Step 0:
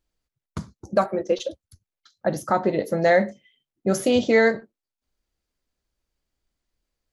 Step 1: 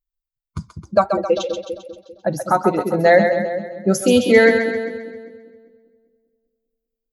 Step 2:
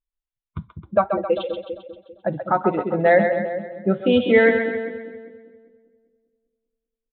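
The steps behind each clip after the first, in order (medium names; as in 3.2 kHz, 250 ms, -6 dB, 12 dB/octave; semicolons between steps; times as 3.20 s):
expander on every frequency bin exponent 1.5; two-band feedback delay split 520 Hz, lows 198 ms, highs 132 ms, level -6.5 dB; trim +6.5 dB
resampled via 8 kHz; trim -3 dB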